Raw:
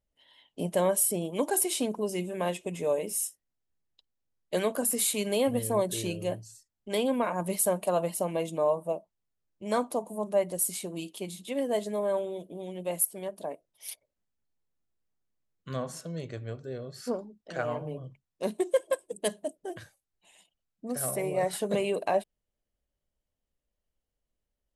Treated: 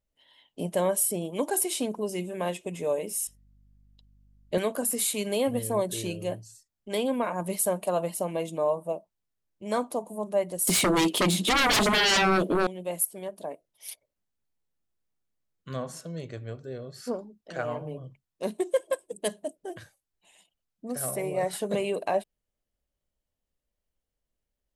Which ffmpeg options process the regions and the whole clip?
-filter_complex "[0:a]asettb=1/sr,asplit=3[a][b][c];[a]atrim=end=3.274[d];[b]atrim=start=3.27:end=4.58,asetpts=PTS-STARTPTS,afade=t=in:d=0.004:c=qsin,afade=t=out:st=1.306:d=0.004:c=qsin,aeval=exprs='val(0)+0.000398*(sin(2*PI*50*n/s)+sin(2*PI*2*50*n/s)/2+sin(2*PI*3*50*n/s)/3+sin(2*PI*4*50*n/s)/4+sin(2*PI*5*50*n/s)/5)':c=same,acrossover=split=4900[e][f];[f]acompressor=threshold=-58dB:ratio=4:attack=1:release=60[g];[e][g]amix=inputs=2:normalize=0,lowshelf=f=250:g=10.5[h];[c]atrim=start=4.576[i];[d][h]acrossfade=d=0.004:c1=hsin:c2=qsin[j];[j][i]acrossfade=d=0.004:c1=qsin:c2=hsin,asettb=1/sr,asplit=3[k][l][m];[k]atrim=end=10.674[n];[l]atrim=start=10.67:end=12.67,asetpts=PTS-STARTPTS,afade=t=in:d=0.004:c=qsin,afade=t=out:st=1.996:d=0.004:c=qsin,highpass=190,highshelf=f=5.2k:g=-10,aeval=exprs='0.112*sin(PI/2*8.91*val(0)/0.112)':c=same[o];[m]atrim=start=12.666[p];[n][o]acrossfade=d=0.004:c1=hsin:c2=qsin[q];[q][p]acrossfade=d=0.004:c1=qsin:c2=hsin"

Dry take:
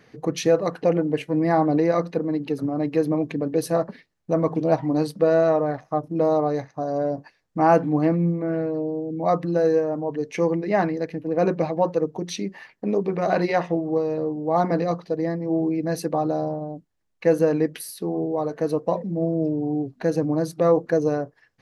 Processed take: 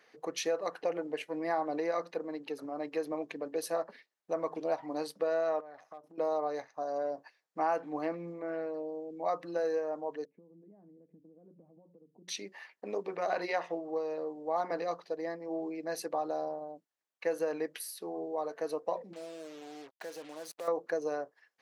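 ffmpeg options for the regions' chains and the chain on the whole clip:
-filter_complex "[0:a]asettb=1/sr,asplit=3[a][b][c];[a]atrim=end=5.604[d];[b]atrim=start=5.6:end=6.18,asetpts=PTS-STARTPTS,afade=t=in:d=0.004:c=qsin,afade=t=out:st=0.576:d=0.004:c=qsin,asoftclip=type=hard:threshold=-14.5dB,acompressor=threshold=-34dB:ratio=20:attack=3.2:release=140:knee=1:detection=peak[e];[c]atrim=start=6.176[f];[d][e]acrossfade=d=0.004:c1=hsin:c2=qsin[g];[g][f]acrossfade=d=0.004:c1=qsin:c2=hsin,asettb=1/sr,asplit=3[h][i][j];[h]atrim=end=10.254[k];[i]atrim=start=10.25:end=12.28,asetpts=PTS-STARTPTS,afade=t=in:d=0.004:c=qsin,afade=t=out:st=2.026:d=0.004:c=qsin,acompressor=threshold=-32dB:ratio=10:attack=3.2:release=140:knee=1:detection=peak,lowpass=f=200:t=q:w=1.8[l];[j]atrim=start=12.276[m];[k][l]acrossfade=d=0.004:c1=hsin:c2=qsin[n];[n][m]acrossfade=d=0.004:c1=qsin:c2=hsin,asettb=1/sr,asplit=3[o][p][q];[o]atrim=end=19.134[r];[p]atrim=start=19.13:end=20.68,asetpts=PTS-STARTPTS,afade=t=in:d=0.004:c=qsin,afade=t=out:st=1.546:d=0.004:c=qsin,lowshelf=f=380:g=-8,acompressor=threshold=-31dB:ratio=2.5:attack=3.2:release=140:knee=1:detection=peak,acrusher=bits=6:mix=0:aa=0.5[s];[q]atrim=start=20.676[t];[r][s]acrossfade=d=0.004:c1=hsin:c2=qsin[u];[u][t]acrossfade=d=0.004:c1=qsin:c2=hsin,highpass=540,acompressor=threshold=-22dB:ratio=3,volume=-6dB"

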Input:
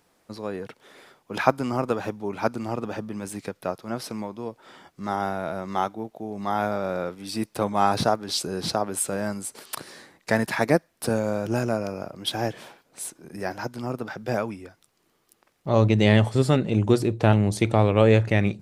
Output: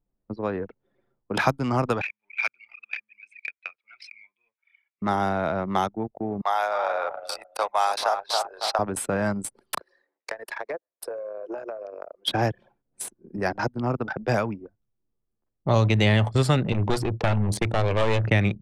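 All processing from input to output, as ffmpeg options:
-filter_complex "[0:a]asettb=1/sr,asplit=3[a][b][c];[a]atrim=end=2.014[d];[b]atrim=start=2.01:end=5.02,asetpts=PTS-STARTPTS,afade=t=in:d=0.004:c=qsin,afade=t=out:st=3.006:d=0.004:c=qsin,aeval=exprs='if(lt(val(0),0),0.708*val(0),val(0))':c=same,adynamicsmooth=sensitivity=3:basefreq=6.6k,highpass=f=2.3k:t=q:w=6.1[e];[c]atrim=start=5.016[f];[d][e]acrossfade=d=0.004:c1=hsin:c2=qsin[g];[g][f]acrossfade=d=0.004:c1=qsin:c2=hsin,asettb=1/sr,asplit=3[h][i][j];[h]atrim=end=6.414[k];[i]atrim=start=6.41:end=8.79,asetpts=PTS-STARTPTS,afade=t=in:d=0.004:c=qsin,afade=t=out:st=2.376:d=0.004:c=qsin,highpass=f=620:w=0.5412,highpass=f=620:w=1.3066,asplit=2[l][m];[m]adelay=276,lowpass=f=3k:p=1,volume=-8dB,asplit=2[n][o];[o]adelay=276,lowpass=f=3k:p=1,volume=0.46,asplit=2[p][q];[q]adelay=276,lowpass=f=3k:p=1,volume=0.46,asplit=2[r][s];[s]adelay=276,lowpass=f=3k:p=1,volume=0.46,asplit=2[t][u];[u]adelay=276,lowpass=f=3k:p=1,volume=0.46[v];[l][n][p][r][t][v]amix=inputs=6:normalize=0,atrim=end_sample=104958[w];[j]atrim=start=8.786[x];[k][w]acrossfade=d=0.004:c1=hsin:c2=qsin[y];[y][x]acrossfade=d=0.004:c1=qsin:c2=hsin,asettb=1/sr,asplit=3[z][aa][ab];[z]atrim=end=9.794[ac];[aa]atrim=start=9.79:end=12.28,asetpts=PTS-STARTPTS,afade=t=in:d=0.004:c=qsin,afade=t=out:st=2.486:d=0.004:c=qsin,highpass=f=420:w=0.5412,highpass=f=420:w=1.3066,acompressor=threshold=-33dB:ratio=6:attack=3.2:release=140:knee=1:detection=peak,bandreject=f=750:w=16[ad];[ab]atrim=start=12.276[ae];[ac][ad]acrossfade=d=0.004:c1=hsin:c2=qsin[af];[af][ae]acrossfade=d=0.004:c1=qsin:c2=hsin,asettb=1/sr,asplit=3[ag][ah][ai];[ag]atrim=end=16.724[aj];[ah]atrim=start=16.72:end=18.24,asetpts=PTS-STARTPTS,afade=t=in:d=0.004:c=qsin,afade=t=out:st=1.516:d=0.004:c=qsin,highpass=f=77:p=1,equalizer=f=230:t=o:w=2.6:g=-3.5,aeval=exprs='clip(val(0),-1,0.0447)':c=same[ak];[ai]atrim=start=18.236[al];[aj][ak]acrossfade=d=0.004:c1=hsin:c2=qsin[am];[am][al]acrossfade=d=0.004:c1=qsin:c2=hsin,anlmdn=10,acrossover=split=160|660|3100[an][ao][ap][aq];[an]acompressor=threshold=-28dB:ratio=4[ar];[ao]acompressor=threshold=-35dB:ratio=4[as];[ap]acompressor=threshold=-31dB:ratio=4[at];[aq]acompressor=threshold=-40dB:ratio=4[au];[ar][as][at][au]amix=inputs=4:normalize=0,volume=7dB"

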